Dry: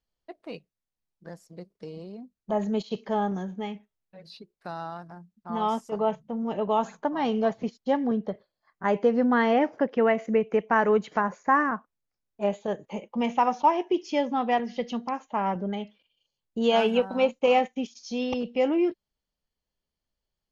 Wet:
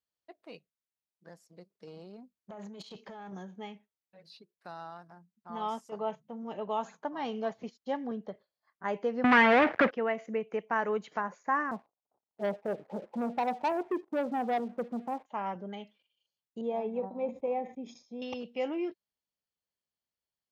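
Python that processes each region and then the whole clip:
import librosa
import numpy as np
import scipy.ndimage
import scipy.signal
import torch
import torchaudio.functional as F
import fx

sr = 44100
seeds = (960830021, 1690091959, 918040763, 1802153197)

y = fx.chain(x, sr, fx.over_compress(threshold_db=-31.0, ratio=-1.0),
    fx.tube_stage(drive_db=28.0, bias=0.4), at=(1.87, 3.33))
y = fx.chain(y, sr, fx.leveller(passes=5),
    fx.lowpass_res(hz=2100.0, q=1.6),
    fx.band_squash(depth_pct=70), at=(9.24, 9.91))
y = fx.chain(y, sr, fx.crossing_spikes(level_db=-25.0),
    fx.steep_lowpass(hz=830.0, slope=36),
    fx.leveller(passes=2), at=(11.71, 15.26))
y = fx.chain(y, sr, fx.moving_average(points=30),
    fx.sustainer(db_per_s=140.0), at=(16.61, 18.22))
y = scipy.signal.sosfilt(scipy.signal.butter(2, 78.0, 'highpass', fs=sr, output='sos'), y)
y = fx.low_shelf(y, sr, hz=420.0, db=-6.0)
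y = F.gain(torch.from_numpy(y), -6.5).numpy()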